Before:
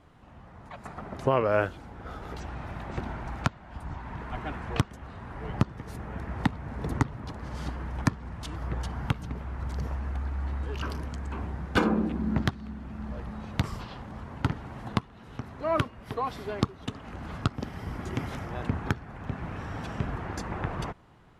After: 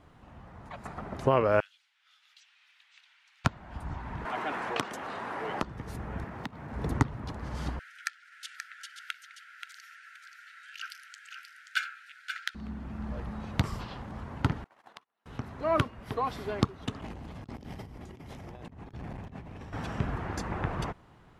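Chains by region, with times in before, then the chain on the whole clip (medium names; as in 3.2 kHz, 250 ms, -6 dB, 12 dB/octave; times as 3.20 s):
1.60–3.45 s: ladder high-pass 2.4 kHz, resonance 30% + treble shelf 7.6 kHz -11 dB
4.25–5.63 s: high-pass 370 Hz + level flattener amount 50%
6.24–6.73 s: median filter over 5 samples + high-pass 130 Hz + compression 3:1, threshold -37 dBFS
7.79–12.55 s: brick-wall FIR high-pass 1.3 kHz + delay 530 ms -7.5 dB
14.64–15.26 s: high-pass 590 Hz + gate -46 dBFS, range -28 dB + compression 5:1, threshold -49 dBFS
17.01–19.73 s: peaking EQ 1.4 kHz -8.5 dB 0.81 oct + compressor with a negative ratio -44 dBFS + transformer saturation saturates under 230 Hz
whole clip: none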